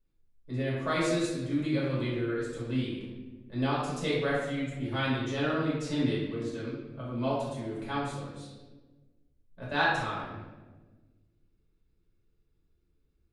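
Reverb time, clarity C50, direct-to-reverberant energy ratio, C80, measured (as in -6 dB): 1.4 s, -0.5 dB, -8.5 dB, 2.5 dB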